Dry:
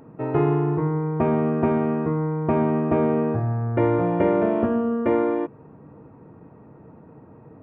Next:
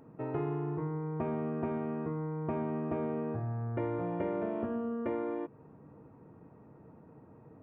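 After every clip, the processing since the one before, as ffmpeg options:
-af "acompressor=threshold=0.0501:ratio=2,volume=0.376"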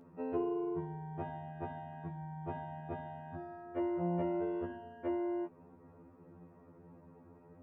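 -af "afftfilt=real='re*2*eq(mod(b,4),0)':imag='im*2*eq(mod(b,4),0)':win_size=2048:overlap=0.75"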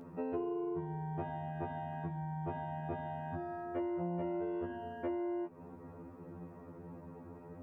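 -af "acompressor=threshold=0.00562:ratio=3,volume=2.37"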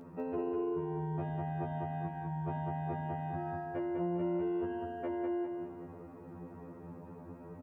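-af "aecho=1:1:200|400|600|800|1000:0.631|0.246|0.096|0.0374|0.0146"

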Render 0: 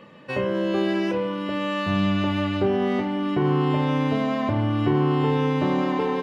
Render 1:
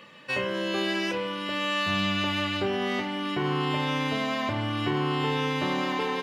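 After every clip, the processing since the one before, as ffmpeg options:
-af "tiltshelf=f=1300:g=-8"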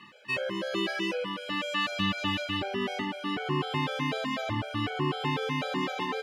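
-af "afftfilt=real='re*gt(sin(2*PI*4*pts/sr)*(1-2*mod(floor(b*sr/1024/430),2)),0)':imag='im*gt(sin(2*PI*4*pts/sr)*(1-2*mod(floor(b*sr/1024/430),2)),0)':win_size=1024:overlap=0.75"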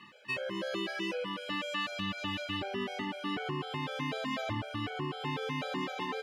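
-af "alimiter=limit=0.0708:level=0:latency=1:release=360,volume=0.75"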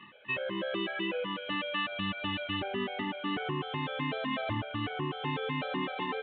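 -af "volume=1.26" -ar 8000 -c:a adpcm_g726 -b:a 40k

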